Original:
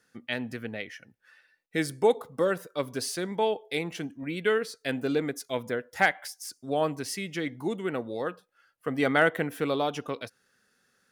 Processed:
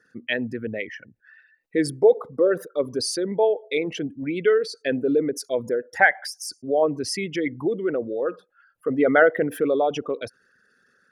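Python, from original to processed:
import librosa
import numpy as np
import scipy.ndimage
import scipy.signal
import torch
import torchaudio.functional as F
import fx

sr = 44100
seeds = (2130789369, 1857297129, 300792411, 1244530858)

y = fx.envelope_sharpen(x, sr, power=2.0)
y = y * 10.0 ** (6.5 / 20.0)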